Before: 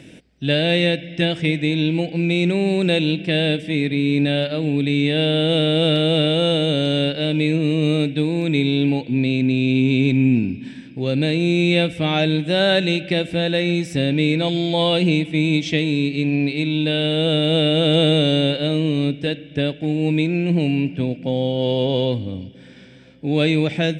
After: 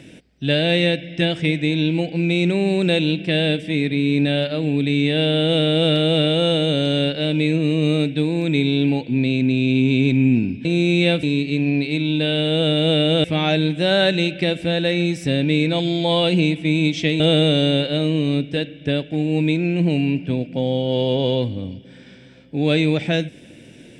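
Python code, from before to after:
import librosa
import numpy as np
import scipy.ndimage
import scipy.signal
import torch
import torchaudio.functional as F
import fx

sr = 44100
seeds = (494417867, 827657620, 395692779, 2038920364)

y = fx.edit(x, sr, fx.cut(start_s=10.65, length_s=0.7),
    fx.move(start_s=15.89, length_s=2.01, to_s=11.93), tone=tone)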